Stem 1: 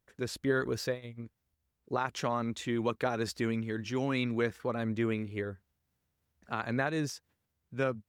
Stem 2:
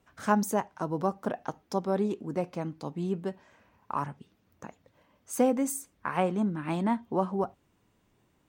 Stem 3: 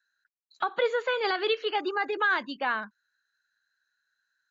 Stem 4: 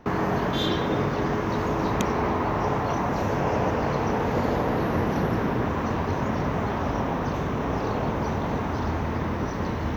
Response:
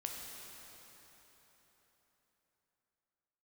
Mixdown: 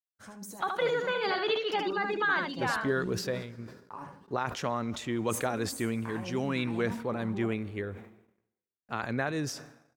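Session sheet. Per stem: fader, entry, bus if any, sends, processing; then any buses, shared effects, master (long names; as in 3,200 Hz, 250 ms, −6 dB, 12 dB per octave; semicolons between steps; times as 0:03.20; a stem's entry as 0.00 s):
−1.0 dB, 2.40 s, send −17.5 dB, no echo send, no processing
−10.5 dB, 0.00 s, send −8.5 dB, echo send −5.5 dB, compressor whose output falls as the input rises −31 dBFS, ratio −1; notch filter 1,300 Hz, Q 22; flanger 0.57 Hz, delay 9.1 ms, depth 2.3 ms, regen +16%
−3.5 dB, 0.00 s, no send, echo send −5 dB, no processing
muted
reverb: on, RT60 4.2 s, pre-delay 8 ms
echo: single-tap delay 75 ms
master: noise gate −55 dBFS, range −46 dB; level that may fall only so fast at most 83 dB per second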